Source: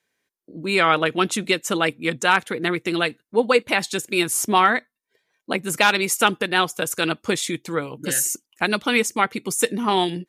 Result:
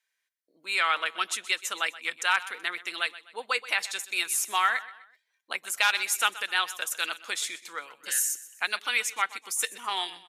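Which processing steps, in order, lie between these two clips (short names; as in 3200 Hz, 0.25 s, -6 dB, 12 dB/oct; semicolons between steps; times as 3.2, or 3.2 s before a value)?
HPF 1200 Hz 12 dB/oct; on a send: feedback echo 0.126 s, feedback 41%, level -17 dB; on the sum: gain -4.5 dB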